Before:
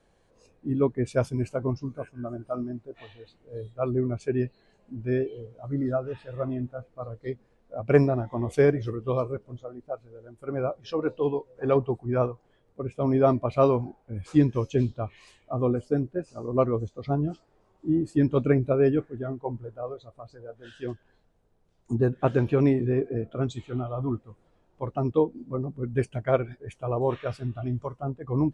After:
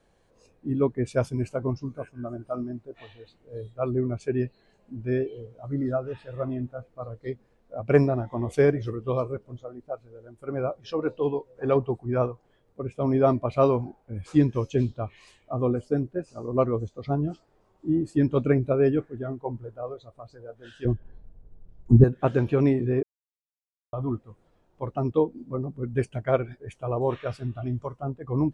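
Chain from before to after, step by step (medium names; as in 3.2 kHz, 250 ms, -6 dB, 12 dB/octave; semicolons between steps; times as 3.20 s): 20.85–22.04 s: tilt EQ -4.5 dB/octave; 23.03–23.93 s: mute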